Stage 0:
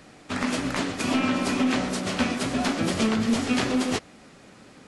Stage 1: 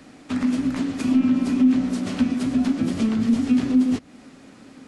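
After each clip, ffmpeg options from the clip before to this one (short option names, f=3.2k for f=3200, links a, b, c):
-filter_complex "[0:a]equalizer=f=260:w=3.9:g=11.5,acrossover=split=280[a][b];[b]acompressor=threshold=-31dB:ratio=6[c];[a][c]amix=inputs=2:normalize=0"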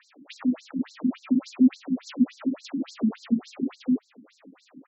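-filter_complex "[0:a]asplit=2[a][b];[b]adelay=215.7,volume=-22dB,highshelf=f=4k:g=-4.85[c];[a][c]amix=inputs=2:normalize=0,afftfilt=real='re*between(b*sr/1024,220*pow(5700/220,0.5+0.5*sin(2*PI*3.5*pts/sr))/1.41,220*pow(5700/220,0.5+0.5*sin(2*PI*3.5*pts/sr))*1.41)':imag='im*between(b*sr/1024,220*pow(5700/220,0.5+0.5*sin(2*PI*3.5*pts/sr))/1.41,220*pow(5700/220,0.5+0.5*sin(2*PI*3.5*pts/sr))*1.41)':win_size=1024:overlap=0.75"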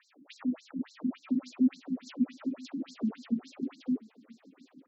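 -af "aecho=1:1:981:0.0708,volume=-7dB"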